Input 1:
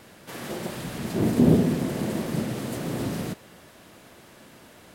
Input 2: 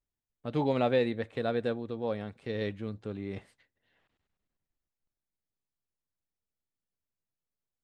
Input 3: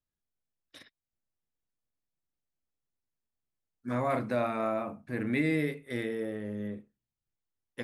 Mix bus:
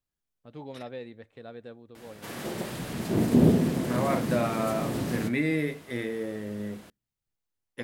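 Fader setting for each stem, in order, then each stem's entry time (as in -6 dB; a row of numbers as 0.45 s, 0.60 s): -1.5 dB, -13.0 dB, +1.5 dB; 1.95 s, 0.00 s, 0.00 s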